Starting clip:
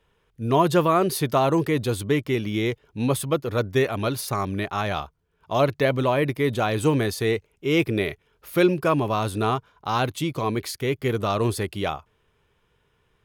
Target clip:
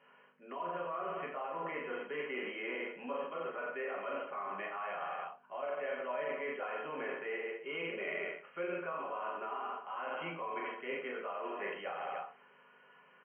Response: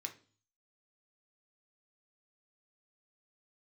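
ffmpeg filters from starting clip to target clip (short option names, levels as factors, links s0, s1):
-filter_complex "[0:a]acrossover=split=430 2000:gain=0.158 1 0.158[s0][s1][s2];[s0][s1][s2]amix=inputs=3:normalize=0,aecho=1:1:40|88|145.6|214.7|297.7:0.631|0.398|0.251|0.158|0.1,acrossover=split=540[s3][s4];[s4]acontrast=86[s5];[s3][s5]amix=inputs=2:normalize=0,alimiter=limit=0.168:level=0:latency=1:release=89,areverse,acompressor=threshold=0.0126:ratio=16,areverse,aeval=exprs='val(0)+0.000251*(sin(2*PI*50*n/s)+sin(2*PI*2*50*n/s)/2+sin(2*PI*3*50*n/s)/3+sin(2*PI*4*50*n/s)/4+sin(2*PI*5*50*n/s)/5)':c=same[s6];[1:a]atrim=start_sample=2205,asetrate=70560,aresample=44100[s7];[s6][s7]afir=irnorm=-1:irlink=0,afftfilt=real='re*between(b*sr/4096,150,3200)':imag='im*between(b*sr/4096,150,3200)':win_size=4096:overlap=0.75,volume=3.35"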